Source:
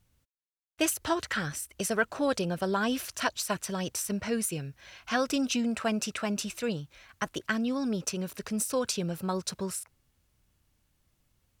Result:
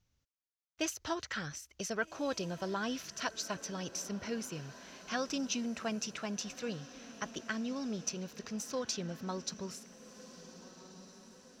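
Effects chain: resonant high shelf 7500 Hz -7.5 dB, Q 3; diffused feedback echo 1.556 s, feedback 51%, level -15 dB; gain -8 dB

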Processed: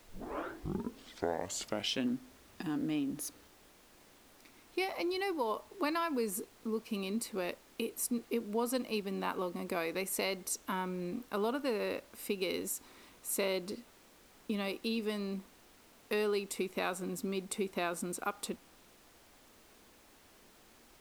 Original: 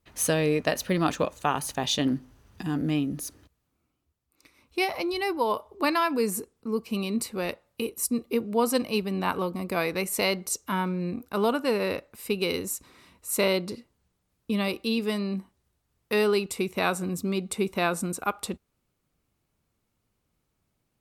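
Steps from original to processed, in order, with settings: tape start at the beginning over 2.21 s; compressor 2:1, threshold -31 dBFS, peak gain reduction 7.5 dB; added noise pink -56 dBFS; resonant low shelf 190 Hz -6.5 dB, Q 1.5; gain -4 dB

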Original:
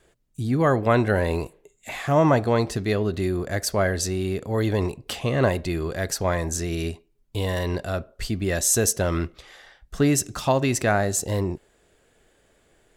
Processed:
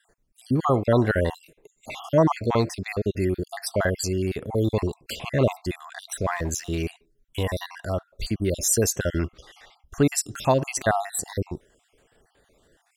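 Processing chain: random spectral dropouts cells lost 50%; 6.21–6.86 backlash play -46 dBFS; gain +1 dB

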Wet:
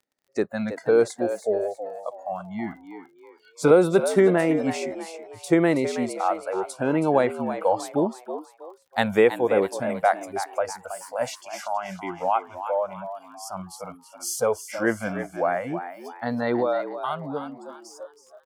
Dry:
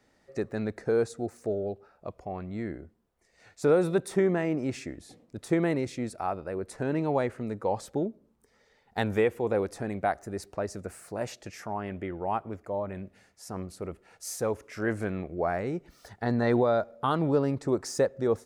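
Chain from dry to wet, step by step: ending faded out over 3.74 s; HPF 190 Hz 12 dB/oct; spectral noise reduction 28 dB; 2.73–3.71 comb 6 ms, depth 71%; crackle 28/s -56 dBFS; frequency-shifting echo 0.323 s, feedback 37%, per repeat +82 Hz, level -10.5 dB; gain +7.5 dB

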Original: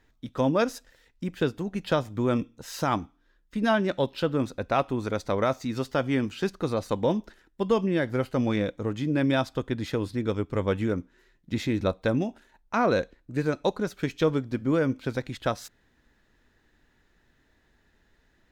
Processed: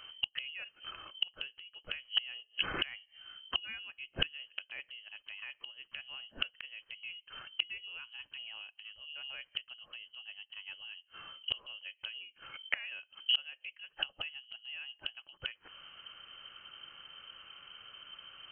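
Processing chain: inverted band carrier 3100 Hz; flipped gate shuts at -28 dBFS, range -33 dB; gain +11.5 dB

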